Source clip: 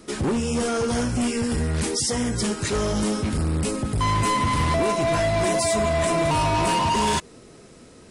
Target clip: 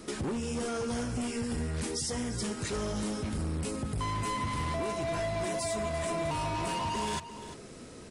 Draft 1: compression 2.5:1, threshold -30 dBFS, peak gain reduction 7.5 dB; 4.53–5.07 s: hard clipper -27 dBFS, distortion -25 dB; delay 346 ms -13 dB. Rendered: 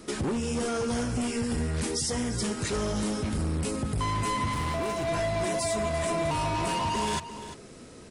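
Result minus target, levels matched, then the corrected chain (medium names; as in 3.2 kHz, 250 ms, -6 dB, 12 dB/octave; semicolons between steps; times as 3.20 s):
compression: peak gain reduction -4 dB
compression 2.5:1, threshold -37 dBFS, peak gain reduction 11.5 dB; 4.53–5.07 s: hard clipper -27 dBFS, distortion -75 dB; delay 346 ms -13 dB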